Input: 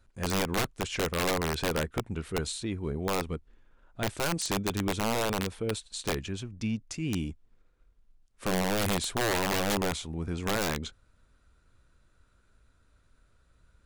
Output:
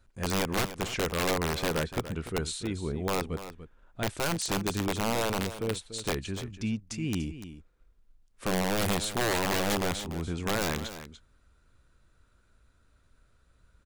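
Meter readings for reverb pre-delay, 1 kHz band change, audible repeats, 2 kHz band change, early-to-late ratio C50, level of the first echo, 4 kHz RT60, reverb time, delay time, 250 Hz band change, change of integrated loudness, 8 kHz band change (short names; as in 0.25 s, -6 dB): none, 0.0 dB, 1, 0.0 dB, none, -12.5 dB, none, none, 0.291 s, 0.0 dB, 0.0 dB, 0.0 dB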